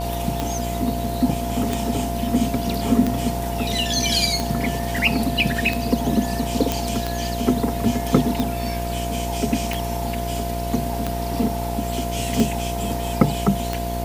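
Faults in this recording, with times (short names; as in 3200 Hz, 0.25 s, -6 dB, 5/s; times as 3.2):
buzz 60 Hz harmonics 17 -27 dBFS
tick 45 rpm -9 dBFS
tone 690 Hz -28 dBFS
6.72 pop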